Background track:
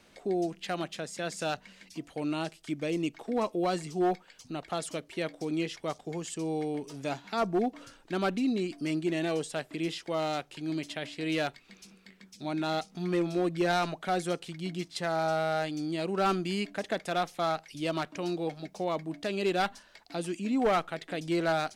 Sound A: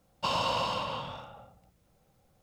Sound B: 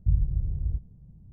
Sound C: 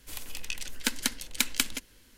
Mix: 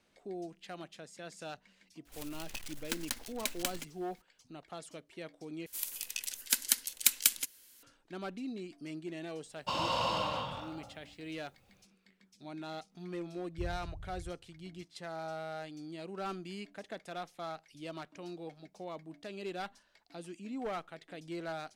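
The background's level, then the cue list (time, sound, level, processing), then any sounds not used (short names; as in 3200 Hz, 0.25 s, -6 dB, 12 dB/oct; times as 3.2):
background track -12 dB
2.05 add C -9.5 dB + block floating point 3-bit
5.66 replace with C -9 dB + RIAA curve recording
9.44 add A -5.5 dB + AGC gain up to 4.5 dB
13.52 add B -17.5 dB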